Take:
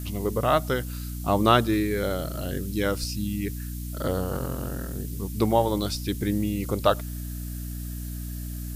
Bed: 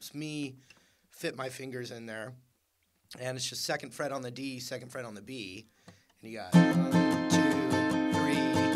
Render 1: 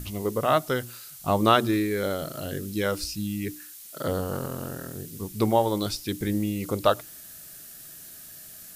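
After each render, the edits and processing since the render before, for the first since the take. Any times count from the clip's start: notches 60/120/180/240/300/360 Hz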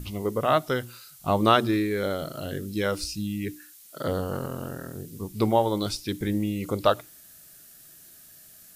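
noise print and reduce 6 dB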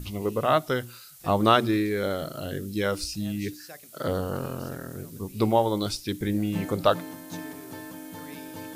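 add bed -12.5 dB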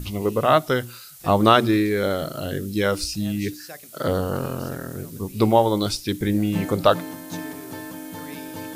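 gain +5 dB; limiter -1 dBFS, peak gain reduction 1.5 dB

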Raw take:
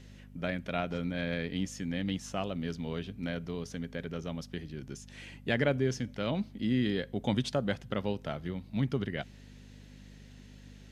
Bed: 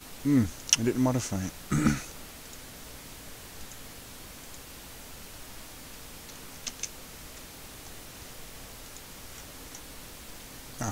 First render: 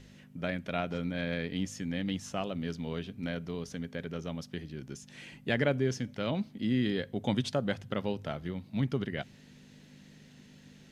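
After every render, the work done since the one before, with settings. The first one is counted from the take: de-hum 50 Hz, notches 2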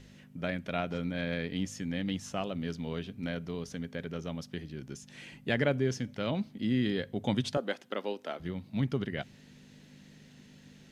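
7.57–8.4 HPF 270 Hz 24 dB/oct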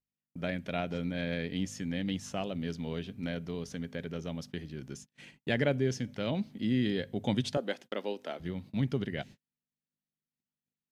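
gate -47 dBFS, range -44 dB; dynamic EQ 1200 Hz, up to -5 dB, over -51 dBFS, Q 2.1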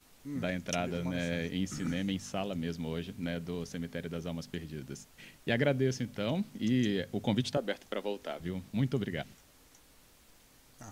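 add bed -16 dB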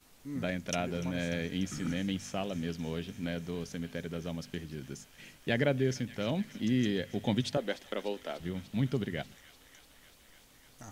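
thin delay 0.295 s, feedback 81%, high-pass 1600 Hz, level -16 dB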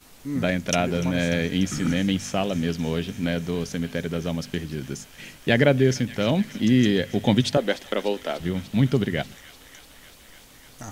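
gain +10.5 dB

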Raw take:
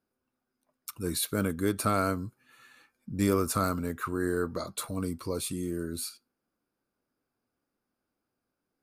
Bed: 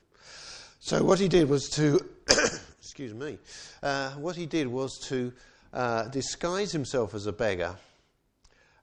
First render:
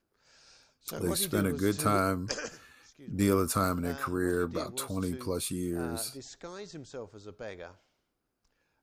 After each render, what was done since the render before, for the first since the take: add bed -14 dB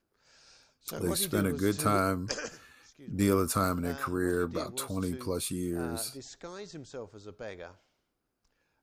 nothing audible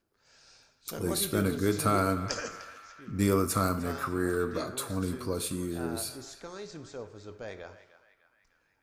narrowing echo 0.301 s, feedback 59%, band-pass 1800 Hz, level -11.5 dB; plate-style reverb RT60 0.69 s, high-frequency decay 0.8×, DRR 9.5 dB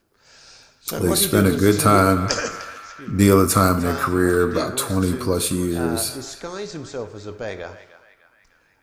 gain +11.5 dB; limiter -1 dBFS, peak gain reduction 1 dB

